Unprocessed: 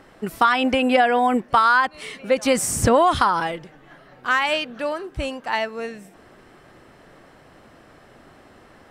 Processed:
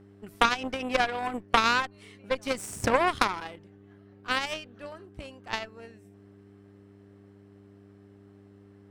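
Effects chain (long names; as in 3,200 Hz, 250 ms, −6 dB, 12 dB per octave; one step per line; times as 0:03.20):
hum with harmonics 100 Hz, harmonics 4, −36 dBFS −1 dB per octave
harmonic generator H 2 −11 dB, 3 −11 dB, 8 −44 dB, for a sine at −4.5 dBFS
level −1.5 dB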